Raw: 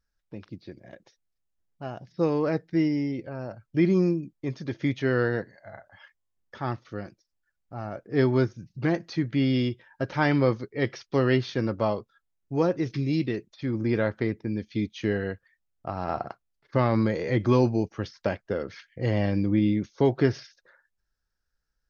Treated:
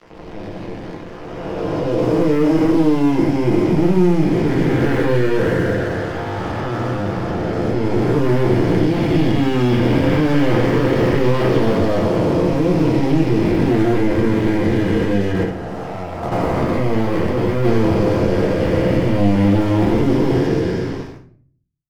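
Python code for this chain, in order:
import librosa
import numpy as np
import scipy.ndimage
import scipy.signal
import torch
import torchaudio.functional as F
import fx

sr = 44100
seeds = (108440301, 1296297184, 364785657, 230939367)

y = fx.spec_blur(x, sr, span_ms=962.0)
y = scipy.signal.sosfilt(scipy.signal.butter(2, 5300.0, 'lowpass', fs=sr, output='sos'), y)
y = fx.low_shelf(y, sr, hz=180.0, db=-2.0)
y = fx.leveller(y, sr, passes=1)
y = fx.transient(y, sr, attack_db=-7, sustain_db=0)
y = fx.leveller(y, sr, passes=3)
y = np.sign(y) * np.maximum(np.abs(y) - 10.0 ** (-48.0 / 20.0), 0.0)
y = fx.level_steps(y, sr, step_db=13, at=(15.32, 17.65))
y = fx.room_shoebox(y, sr, seeds[0], volume_m3=37.0, walls='mixed', distance_m=0.76)
y = fx.band_squash(y, sr, depth_pct=40)
y = y * librosa.db_to_amplitude(1.5)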